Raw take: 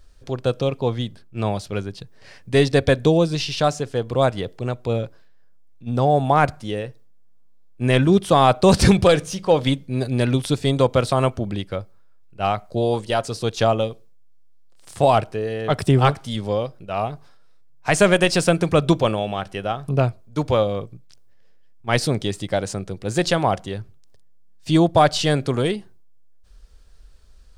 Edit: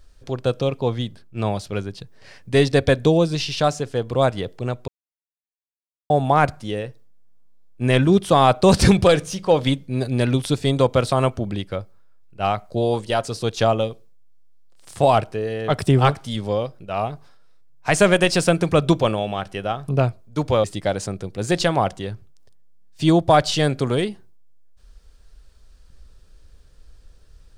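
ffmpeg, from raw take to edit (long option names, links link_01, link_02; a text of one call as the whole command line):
ffmpeg -i in.wav -filter_complex "[0:a]asplit=4[link_01][link_02][link_03][link_04];[link_01]atrim=end=4.88,asetpts=PTS-STARTPTS,afade=type=out:start_time=4.876:duration=0.004:curve=hsin[link_05];[link_02]atrim=start=4.88:end=6.1,asetpts=PTS-STARTPTS,volume=0[link_06];[link_03]atrim=start=6.1:end=20.642,asetpts=PTS-STARTPTS,afade=type=in:duration=0.004:curve=hsin[link_07];[link_04]atrim=start=22.308[link_08];[link_05][link_06][link_07]concat=n=3:v=0:a=1[link_09];[link_09][link_08]acrossfade=duration=0.004:curve1=hsin:curve2=hsin" out.wav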